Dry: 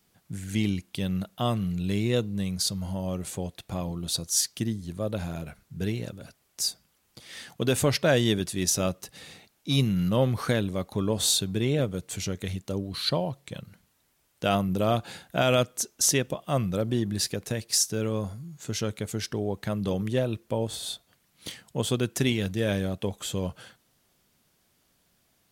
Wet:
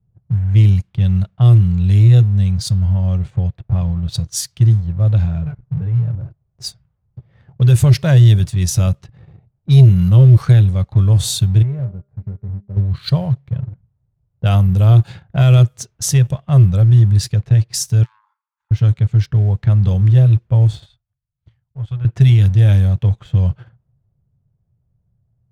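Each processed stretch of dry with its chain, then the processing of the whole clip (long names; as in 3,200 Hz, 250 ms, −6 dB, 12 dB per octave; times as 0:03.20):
0:05.45–0:06.15: comb filter 6.8 ms, depth 87% + downward compressor 8 to 1, threshold −33 dBFS
0:11.62–0:12.77: moving average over 14 samples + tuned comb filter 200 Hz, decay 0.4 s, mix 80%
0:18.03–0:18.71: phase distortion by the signal itself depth 0.28 ms + linear-phase brick-wall high-pass 840 Hz + downward compressor 8 to 1, threshold −47 dBFS
0:20.86–0:22.05: mu-law and A-law mismatch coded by A + guitar amp tone stack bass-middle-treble 10-0-10
whole clip: low-pass that shuts in the quiet parts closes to 530 Hz, open at −22.5 dBFS; low shelf with overshoot 180 Hz +14 dB, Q 3; leveller curve on the samples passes 1; level −1.5 dB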